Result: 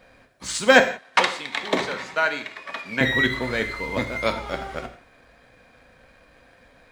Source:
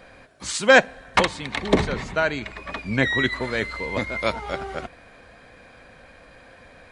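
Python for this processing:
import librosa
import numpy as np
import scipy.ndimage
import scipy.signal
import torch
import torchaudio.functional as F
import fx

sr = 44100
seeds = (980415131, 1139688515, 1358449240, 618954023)

y = fx.law_mismatch(x, sr, coded='A')
y = fx.weighting(y, sr, curve='A', at=(0.8, 3.01))
y = fx.rev_gated(y, sr, seeds[0], gate_ms=200, shape='falling', drr_db=6.0)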